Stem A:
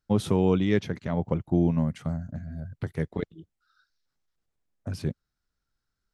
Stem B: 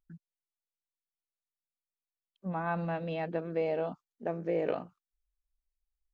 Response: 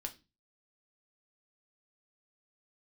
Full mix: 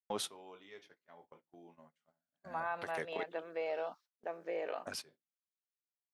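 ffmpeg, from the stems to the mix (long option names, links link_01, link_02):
-filter_complex "[0:a]volume=3dB,asplit=2[link_01][link_02];[link_02]volume=-22dB[link_03];[1:a]volume=-1dB,asplit=2[link_04][link_05];[link_05]apad=whole_len=270591[link_06];[link_01][link_06]sidechaingate=range=-48dB:threshold=-60dB:ratio=16:detection=peak[link_07];[2:a]atrim=start_sample=2205[link_08];[link_03][link_08]afir=irnorm=-1:irlink=0[link_09];[link_07][link_04][link_09]amix=inputs=3:normalize=0,highpass=670,agate=range=-19dB:threshold=-60dB:ratio=16:detection=peak,alimiter=level_in=3dB:limit=-24dB:level=0:latency=1:release=89,volume=-3dB"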